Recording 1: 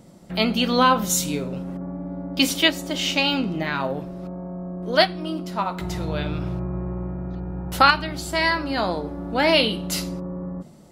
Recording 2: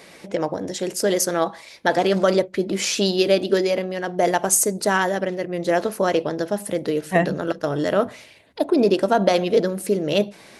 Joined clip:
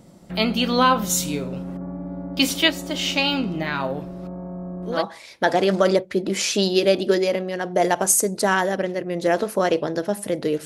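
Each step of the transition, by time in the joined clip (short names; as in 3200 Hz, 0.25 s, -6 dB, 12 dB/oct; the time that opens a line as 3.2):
recording 1
4.97 switch to recording 2 from 1.4 s, crossfade 0.12 s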